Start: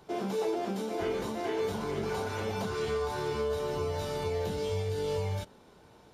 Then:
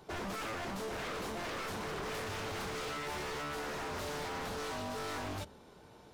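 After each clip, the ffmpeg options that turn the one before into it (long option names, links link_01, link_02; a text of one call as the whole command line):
ffmpeg -i in.wav -af "bandreject=frequency=73.93:width_type=h:width=4,bandreject=frequency=147.86:width_type=h:width=4,bandreject=frequency=221.79:width_type=h:width=4,aeval=exprs='0.0188*(abs(mod(val(0)/0.0188+3,4)-2)-1)':channel_layout=same" out.wav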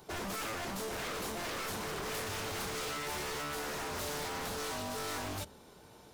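ffmpeg -i in.wav -af "crystalizer=i=1.5:c=0" out.wav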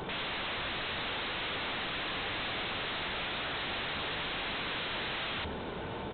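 ffmpeg -i in.wav -filter_complex "[0:a]aresample=8000,aeval=exprs='0.0251*sin(PI/2*6.31*val(0)/0.0251)':channel_layout=same,aresample=44100,asplit=2[link_01][link_02];[link_02]adelay=583.1,volume=-12dB,highshelf=frequency=4000:gain=-13.1[link_03];[link_01][link_03]amix=inputs=2:normalize=0,volume=-1dB" out.wav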